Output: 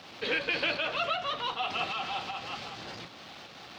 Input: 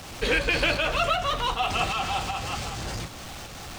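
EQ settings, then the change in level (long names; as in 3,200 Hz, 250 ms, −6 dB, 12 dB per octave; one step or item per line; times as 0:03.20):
high-pass filter 190 Hz 12 dB per octave
high shelf with overshoot 6,000 Hz −13.5 dB, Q 1.5
−7.0 dB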